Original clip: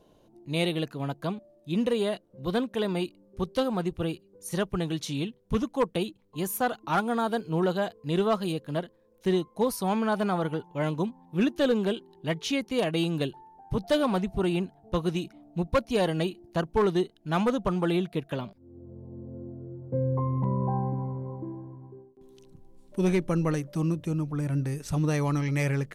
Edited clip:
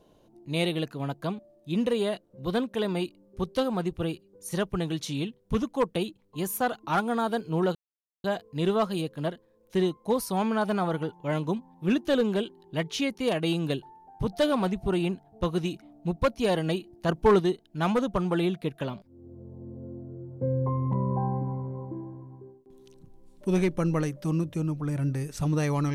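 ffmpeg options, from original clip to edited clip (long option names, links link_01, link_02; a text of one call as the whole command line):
ffmpeg -i in.wav -filter_complex "[0:a]asplit=4[link_01][link_02][link_03][link_04];[link_01]atrim=end=7.75,asetpts=PTS-STARTPTS,afade=type=out:start_time=7.746:duration=0.004:curve=hsin,apad=pad_dur=0.49[link_05];[link_02]atrim=start=7.75:end=16.602,asetpts=PTS-STARTPTS,afade=type=in:duration=0.004:curve=hsin[link_06];[link_03]atrim=start=16.598:end=16.912,asetpts=PTS-STARTPTS,volume=4dB[link_07];[link_04]atrim=start=16.908[link_08];[link_05][link_06]concat=n=2:v=0:a=1[link_09];[link_09][link_07]acrossfade=duration=0.004:curve1=hsin:curve2=hsin[link_10];[link_10][link_08]acrossfade=duration=0.004:curve1=hsin:curve2=hsin" out.wav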